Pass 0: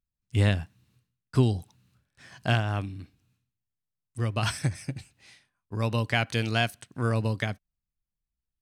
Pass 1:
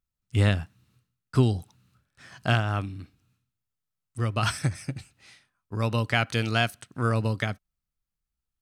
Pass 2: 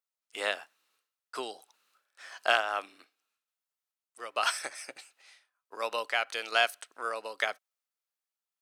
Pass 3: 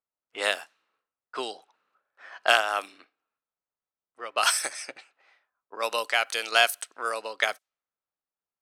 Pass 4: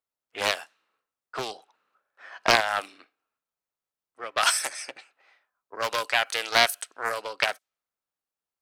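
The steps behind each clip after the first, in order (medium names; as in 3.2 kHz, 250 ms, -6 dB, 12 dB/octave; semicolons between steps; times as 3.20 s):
peaking EQ 1.3 kHz +8 dB 0.2 oct; trim +1 dB
high-pass 500 Hz 24 dB/octave; random-step tremolo 2.3 Hz; trim +2 dB
treble shelf 6.4 kHz +12 dB; level-controlled noise filter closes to 1.1 kHz, open at -28.5 dBFS; trim +4 dB
loudspeaker Doppler distortion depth 0.4 ms; trim +1 dB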